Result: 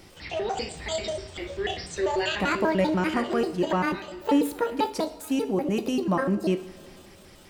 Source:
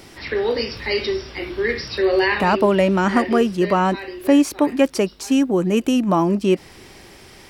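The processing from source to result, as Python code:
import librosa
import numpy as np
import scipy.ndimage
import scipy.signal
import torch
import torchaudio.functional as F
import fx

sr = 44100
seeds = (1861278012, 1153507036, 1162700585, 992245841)

y = fx.pitch_trill(x, sr, semitones=8.0, every_ms=98)
y = fx.low_shelf(y, sr, hz=110.0, db=7.0)
y = fx.rev_double_slope(y, sr, seeds[0], early_s=0.52, late_s=3.2, knee_db=-17, drr_db=8.5)
y = F.gain(torch.from_numpy(y), -8.5).numpy()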